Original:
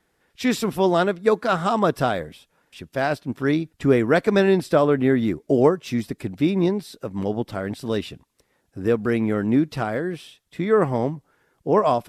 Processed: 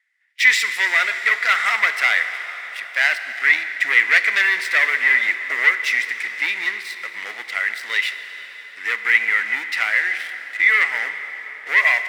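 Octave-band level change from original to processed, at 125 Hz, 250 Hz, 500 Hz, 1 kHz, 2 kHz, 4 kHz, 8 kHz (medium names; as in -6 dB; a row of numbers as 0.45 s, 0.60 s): under -35 dB, under -25 dB, -18.5 dB, -3.0 dB, +17.5 dB, +9.5 dB, no reading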